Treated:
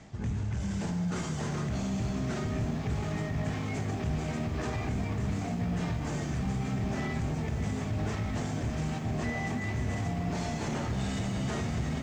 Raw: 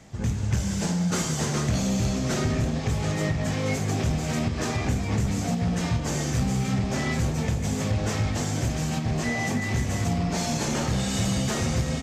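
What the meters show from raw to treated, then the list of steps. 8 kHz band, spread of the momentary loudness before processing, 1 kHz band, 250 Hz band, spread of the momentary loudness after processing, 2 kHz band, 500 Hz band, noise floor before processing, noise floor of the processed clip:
-14.0 dB, 2 LU, -5.5 dB, -6.0 dB, 1 LU, -7.0 dB, -6.5 dB, -29 dBFS, -35 dBFS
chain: tremolo 2.6 Hz, depth 47%; LPF 9500 Hz 24 dB/oct; high shelf 7300 Hz -12 dB; limiter -25.5 dBFS, peak gain reduction 9 dB; notch 520 Hz, Q 12; dynamic EQ 5000 Hz, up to -4 dB, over -56 dBFS, Q 0.88; lo-fi delay 0.599 s, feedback 80%, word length 10-bit, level -11 dB

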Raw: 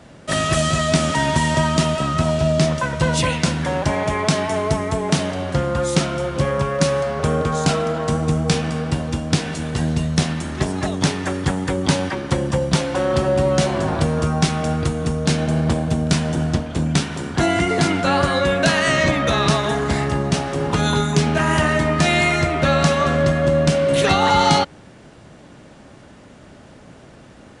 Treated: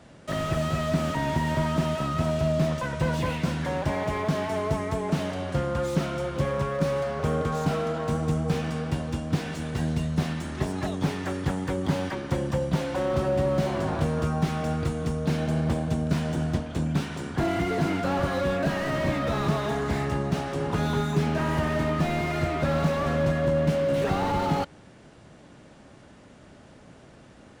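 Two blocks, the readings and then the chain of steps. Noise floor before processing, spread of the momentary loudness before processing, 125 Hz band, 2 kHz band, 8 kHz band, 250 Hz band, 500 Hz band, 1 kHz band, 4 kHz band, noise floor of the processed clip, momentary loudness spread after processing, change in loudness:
-44 dBFS, 5 LU, -6.5 dB, -11.0 dB, -15.5 dB, -6.5 dB, -7.0 dB, -9.0 dB, -14.0 dB, -51 dBFS, 4 LU, -8.0 dB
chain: slew limiter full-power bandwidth 100 Hz; gain -6.5 dB

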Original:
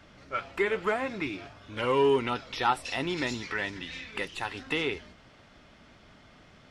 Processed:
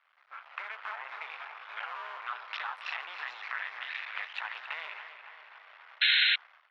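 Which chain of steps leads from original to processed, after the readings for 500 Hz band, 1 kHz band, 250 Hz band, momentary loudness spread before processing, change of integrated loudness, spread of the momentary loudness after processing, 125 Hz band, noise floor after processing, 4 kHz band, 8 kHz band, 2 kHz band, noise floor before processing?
-26.5 dB, -8.0 dB, under -40 dB, 12 LU, -2.0 dB, 24 LU, under -40 dB, -65 dBFS, +6.5 dB, under -20 dB, +1.5 dB, -56 dBFS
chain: cycle switcher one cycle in 2, muted; sample leveller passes 1; air absorption 320 m; limiter -25 dBFS, peak gain reduction 9 dB; compressor 6:1, threshold -40 dBFS, peak gain reduction 11 dB; inverse Chebyshev high-pass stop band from 170 Hz, stop band 80 dB; high shelf 3000 Hz -8.5 dB; tape echo 0.275 s, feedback 69%, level -8.5 dB, low-pass 3400 Hz; painted sound noise, 6.01–6.36, 1400–4200 Hz -36 dBFS; AGC gain up to 16 dB; gain -4 dB

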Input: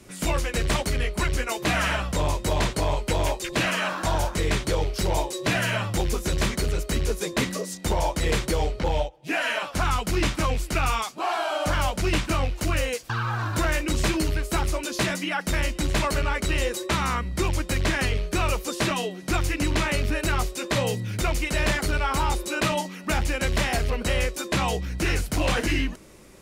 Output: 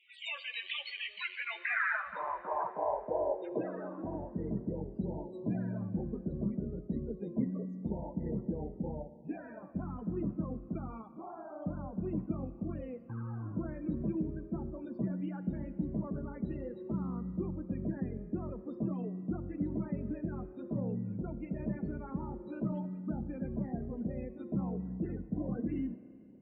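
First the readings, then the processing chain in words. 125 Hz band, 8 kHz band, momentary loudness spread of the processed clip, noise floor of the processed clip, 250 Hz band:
-11.5 dB, under -40 dB, 6 LU, -51 dBFS, -5.5 dB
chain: band-pass sweep 2900 Hz -> 210 Hz, 1.15–4.48; loudest bins only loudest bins 32; Schroeder reverb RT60 2.4 s, combs from 27 ms, DRR 13.5 dB; gain -1.5 dB

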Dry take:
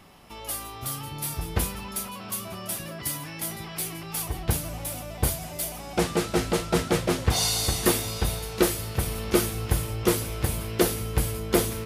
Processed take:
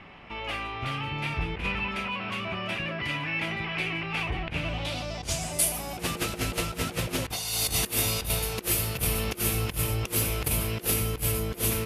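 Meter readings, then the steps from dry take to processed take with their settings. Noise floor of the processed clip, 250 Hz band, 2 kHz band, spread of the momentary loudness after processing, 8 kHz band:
-42 dBFS, -5.5 dB, +4.0 dB, 6 LU, -0.5 dB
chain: dynamic EQ 2600 Hz, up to +7 dB, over -50 dBFS, Q 2.7; negative-ratio compressor -28 dBFS, ratio -0.5; low-pass sweep 2400 Hz -> 13000 Hz, 4.57–5.83

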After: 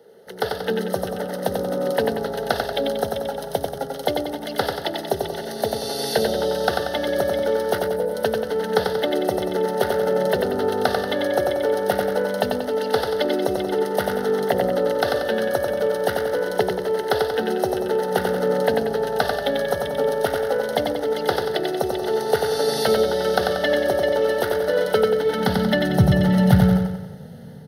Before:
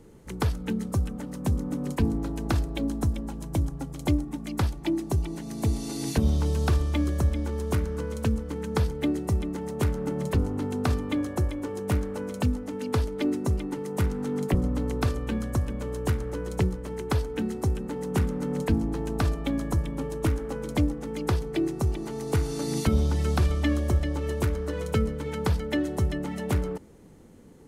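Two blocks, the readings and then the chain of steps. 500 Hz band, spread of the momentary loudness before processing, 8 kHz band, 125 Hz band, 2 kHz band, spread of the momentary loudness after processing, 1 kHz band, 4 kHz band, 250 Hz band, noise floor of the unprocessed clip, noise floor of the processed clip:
+13.5 dB, 6 LU, +4.5 dB, -1.0 dB, +11.5 dB, 7 LU, +12.0 dB, +12.0 dB, +2.5 dB, -38 dBFS, -33 dBFS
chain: spectral gain 7.78–8.14, 950–7900 Hz -15 dB; AGC gain up to 7.5 dB; in parallel at +1 dB: limiter -13 dBFS, peak gain reduction 7.5 dB; on the sum: high-pass sweep 390 Hz -> 140 Hz, 25.08–26.05; fixed phaser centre 1600 Hz, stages 8; on a send: feedback echo 92 ms, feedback 50%, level -4 dB; on the sum: gain -1 dB

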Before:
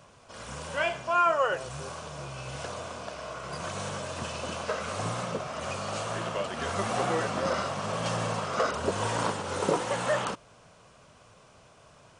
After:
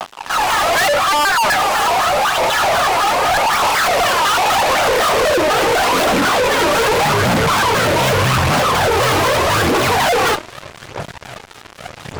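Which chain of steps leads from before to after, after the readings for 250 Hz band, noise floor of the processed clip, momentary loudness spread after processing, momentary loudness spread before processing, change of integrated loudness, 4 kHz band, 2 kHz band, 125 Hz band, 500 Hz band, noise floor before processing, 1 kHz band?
+14.5 dB, -38 dBFS, 5 LU, 11 LU, +17.0 dB, +20.5 dB, +19.0 dB, +14.0 dB, +15.0 dB, -56 dBFS, +17.5 dB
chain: tracing distortion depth 0.18 ms; tone controls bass -7 dB, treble -9 dB; compressor, threshold -29 dBFS, peak gain reduction 10 dB; phaser 0.82 Hz, delay 2.9 ms, feedback 68%; high-pass sweep 820 Hz -> 110 Hz, 4.48–7.46; flange 0.25 Hz, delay 0.3 ms, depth 3.2 ms, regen -26%; Schroeder reverb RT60 0.51 s, combs from 31 ms, DRR 19.5 dB; fuzz box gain 48 dB, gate -55 dBFS; shaped vibrato square 4 Hz, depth 250 cents

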